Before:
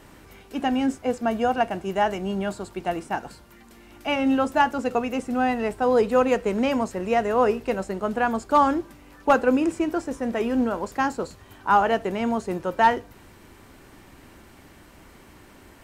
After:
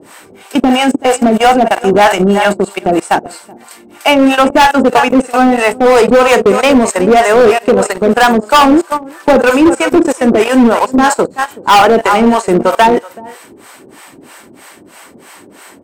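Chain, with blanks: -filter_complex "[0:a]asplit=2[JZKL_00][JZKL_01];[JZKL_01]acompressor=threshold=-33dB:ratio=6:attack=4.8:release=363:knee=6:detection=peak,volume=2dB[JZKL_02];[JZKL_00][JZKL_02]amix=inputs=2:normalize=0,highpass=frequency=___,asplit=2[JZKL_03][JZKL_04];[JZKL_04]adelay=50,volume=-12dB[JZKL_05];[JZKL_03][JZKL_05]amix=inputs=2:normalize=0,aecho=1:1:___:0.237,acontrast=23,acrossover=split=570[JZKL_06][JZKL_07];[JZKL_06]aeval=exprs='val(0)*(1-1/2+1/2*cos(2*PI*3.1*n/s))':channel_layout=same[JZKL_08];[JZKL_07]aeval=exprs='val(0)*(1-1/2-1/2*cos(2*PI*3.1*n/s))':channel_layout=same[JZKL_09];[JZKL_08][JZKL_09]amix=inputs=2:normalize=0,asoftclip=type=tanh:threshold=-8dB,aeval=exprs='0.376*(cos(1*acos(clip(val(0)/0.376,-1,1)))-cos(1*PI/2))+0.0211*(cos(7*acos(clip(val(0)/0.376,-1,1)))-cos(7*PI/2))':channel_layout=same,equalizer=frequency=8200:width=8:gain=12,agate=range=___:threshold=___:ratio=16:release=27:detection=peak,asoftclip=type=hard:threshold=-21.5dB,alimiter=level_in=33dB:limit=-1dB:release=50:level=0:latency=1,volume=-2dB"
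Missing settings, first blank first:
240, 380, -21dB, -36dB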